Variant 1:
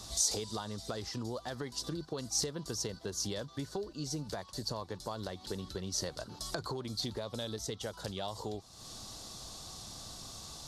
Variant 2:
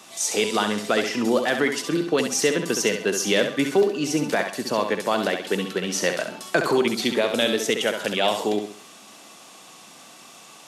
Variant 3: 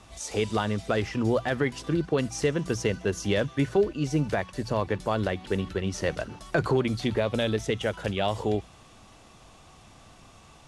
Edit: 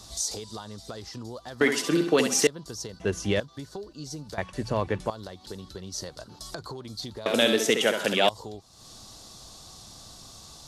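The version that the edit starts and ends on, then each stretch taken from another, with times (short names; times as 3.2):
1
1.61–2.47 from 2
3–3.4 from 3
4.38–5.1 from 3
7.26–8.29 from 2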